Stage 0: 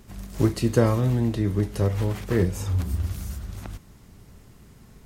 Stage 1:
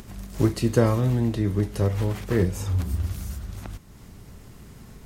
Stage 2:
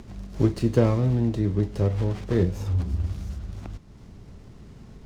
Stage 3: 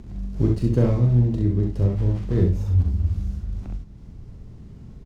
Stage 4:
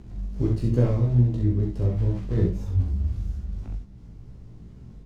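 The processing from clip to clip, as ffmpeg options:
-af "acompressor=mode=upward:threshold=-37dB:ratio=2.5"
-filter_complex "[0:a]lowpass=f=6.2k:w=0.5412,lowpass=f=6.2k:w=1.3066,acrossover=split=840[a][b];[b]aeval=exprs='max(val(0),0)':c=same[c];[a][c]amix=inputs=2:normalize=0"
-filter_complex "[0:a]lowshelf=f=300:g=11.5,asplit=2[a][b];[b]aecho=0:1:41|66:0.501|0.596[c];[a][c]amix=inputs=2:normalize=0,volume=-7.5dB"
-af "flanger=delay=15.5:depth=3.3:speed=2.3"

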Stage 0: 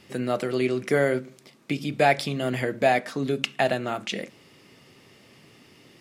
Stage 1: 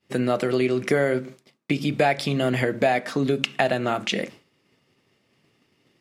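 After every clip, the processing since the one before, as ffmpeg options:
-af "acompressor=threshold=-25dB:ratio=3,agate=range=-33dB:threshold=-41dB:ratio=3:detection=peak,highshelf=f=6.5k:g=-4.5,volume=6.5dB"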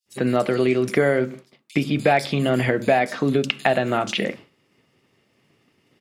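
-filter_complex "[0:a]acrossover=split=4500[a][b];[a]adelay=60[c];[c][b]amix=inputs=2:normalize=0,volume=2.5dB"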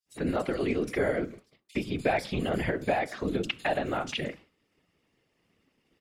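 -af "afftfilt=real='hypot(re,im)*cos(2*PI*random(0))':imag='hypot(re,im)*sin(2*PI*random(1))':win_size=512:overlap=0.75,volume=-3dB"

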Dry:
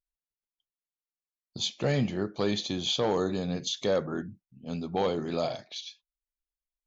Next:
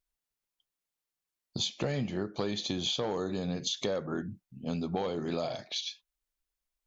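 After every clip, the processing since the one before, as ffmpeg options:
-af "acompressor=threshold=-35dB:ratio=6,volume=5.5dB"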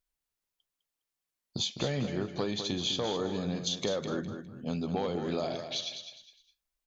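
-af "aecho=1:1:205|410|615:0.376|0.109|0.0316"

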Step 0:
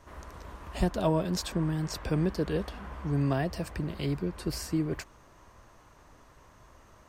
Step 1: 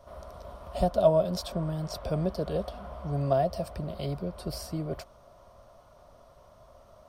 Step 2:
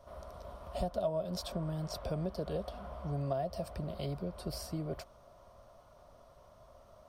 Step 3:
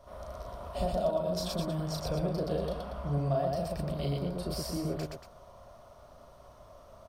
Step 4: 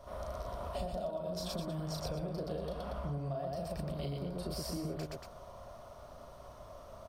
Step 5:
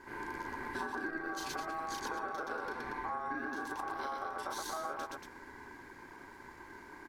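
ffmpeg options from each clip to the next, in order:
-af "superequalizer=6b=0.501:8b=3.55:11b=0.355:12b=0.501:15b=0.447,volume=-1.5dB"
-af "acompressor=threshold=-29dB:ratio=3,volume=-3.5dB"
-af "aecho=1:1:34.99|122.4|233.2:0.708|0.794|0.355,volume=2dB"
-af "acompressor=threshold=-38dB:ratio=6,volume=2.5dB"
-af "aeval=exprs='val(0)*sin(2*PI*960*n/s)':c=same,volume=2dB"

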